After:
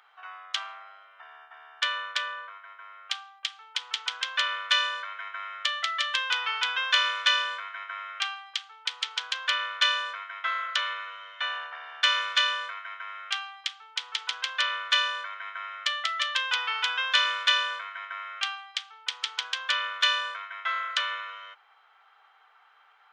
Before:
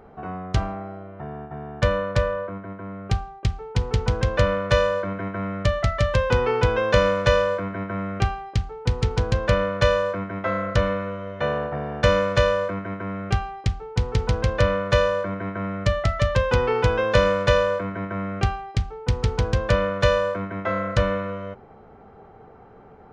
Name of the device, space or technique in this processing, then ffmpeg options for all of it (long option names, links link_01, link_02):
headphones lying on a table: -filter_complex "[0:a]highpass=frequency=1200:width=0.5412,highpass=frequency=1200:width=1.3066,equalizer=frequency=3300:width_type=o:width=0.49:gain=11.5,asettb=1/sr,asplit=3[link_01][link_02][link_03];[link_01]atrim=end=11.324[link_04];[link_02]atrim=start=11.32:end=13.26,asetpts=PTS-STARTPTS,afade=type=in:duration=0.004:curve=qsin,afade=type=out:start_time=1.936:duration=0.004:curve=qsin,highpass=frequency=280:width=0.5412,highpass=frequency=280:width=1.3066[link_05];[link_03]atrim=start=13.256[link_06];[link_04][link_05]acrossfade=duration=0.004:curve1=hsin:curve2=qsin[link_07];[link_07][link_06]acrossfade=duration=0.004:curve1=qsin:curve2=hsin"